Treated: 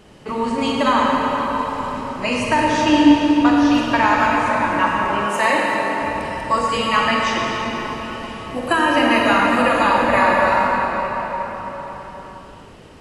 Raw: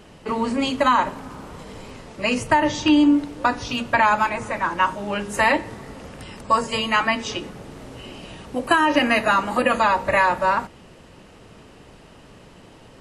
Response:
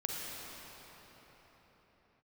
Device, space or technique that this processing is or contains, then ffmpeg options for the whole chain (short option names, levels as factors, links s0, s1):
cathedral: -filter_complex "[1:a]atrim=start_sample=2205[s0];[0:a][s0]afir=irnorm=-1:irlink=0,asettb=1/sr,asplit=3[s1][s2][s3];[s1]atrim=end=5.264[s4];[s2]atrim=start=5.26:end=6.02,asetpts=PTS-STARTPTS,afade=t=in:d=0.004:c=qsin,afade=t=out:st=0.756:d=0.004:c=qsin,highpass=200[s5];[s3]atrim=start=6.016[s6];[s4][s5]acrossfade=d=0.004:c1=hsin:c2=qsin[s7];[s7][s6]acrossfade=d=0.004:c1=qsin:c2=hsin"